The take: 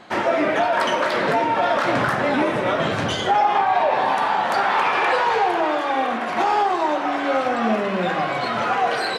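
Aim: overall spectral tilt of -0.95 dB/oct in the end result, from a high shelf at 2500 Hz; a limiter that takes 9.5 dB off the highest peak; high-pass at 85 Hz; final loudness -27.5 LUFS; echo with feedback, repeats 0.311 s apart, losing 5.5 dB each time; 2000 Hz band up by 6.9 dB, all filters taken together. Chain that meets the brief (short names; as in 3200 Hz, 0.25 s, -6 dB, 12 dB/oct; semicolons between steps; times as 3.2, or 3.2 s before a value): HPF 85 Hz; bell 2000 Hz +6 dB; high shelf 2500 Hz +6.5 dB; limiter -13 dBFS; feedback echo 0.311 s, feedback 53%, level -5.5 dB; gain -8 dB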